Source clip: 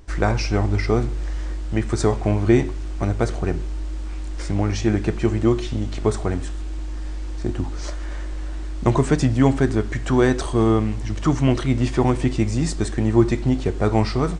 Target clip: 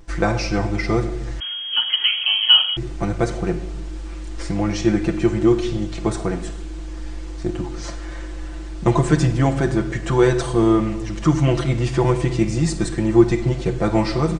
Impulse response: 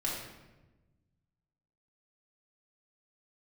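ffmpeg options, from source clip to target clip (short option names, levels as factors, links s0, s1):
-filter_complex "[0:a]aecho=1:1:5.9:0.81,asplit=2[s0][s1];[1:a]atrim=start_sample=2205,afade=t=out:st=0.35:d=0.01,atrim=end_sample=15876,adelay=48[s2];[s1][s2]afir=irnorm=-1:irlink=0,volume=0.168[s3];[s0][s3]amix=inputs=2:normalize=0,asettb=1/sr,asplit=3[s4][s5][s6];[s4]atrim=end=1.404[s7];[s5]atrim=start=1.4:end=2.77,asetpts=PTS-STARTPTS,afade=t=in:d=0.004:c=qsin,afade=t=out:st=1.366:d=0.004:c=qsin,lowpass=f=2800:t=q:w=0.5098,lowpass=f=2800:t=q:w=0.6013,lowpass=f=2800:t=q:w=0.9,lowpass=f=2800:t=q:w=2.563,afreqshift=-3300[s8];[s6]atrim=start=2.766[s9];[s7][s8]acrossfade=d=0.004:c1=hsin:c2=qsin[s10];[s10][s9]acrossfade=d=0.004:c1=qsin:c2=hsin,volume=0.891"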